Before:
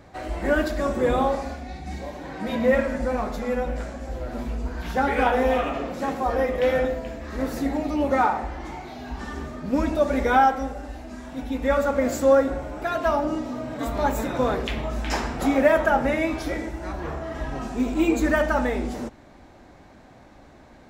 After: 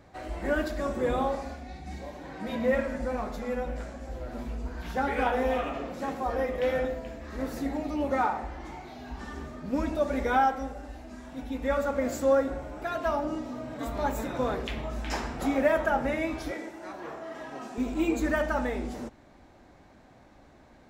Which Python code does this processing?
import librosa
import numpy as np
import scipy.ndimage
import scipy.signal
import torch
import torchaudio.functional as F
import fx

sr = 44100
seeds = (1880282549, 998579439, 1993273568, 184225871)

y = fx.highpass(x, sr, hz=270.0, slope=12, at=(16.51, 17.78))
y = F.gain(torch.from_numpy(y), -6.0).numpy()